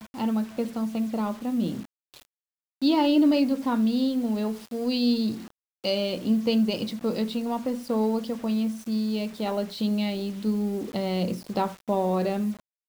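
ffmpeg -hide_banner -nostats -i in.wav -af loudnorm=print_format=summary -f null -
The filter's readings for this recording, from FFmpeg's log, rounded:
Input Integrated:    -26.8 LUFS
Input True Peak:     -12.5 dBTP
Input LRA:             3.2 LU
Input Threshold:     -37.0 LUFS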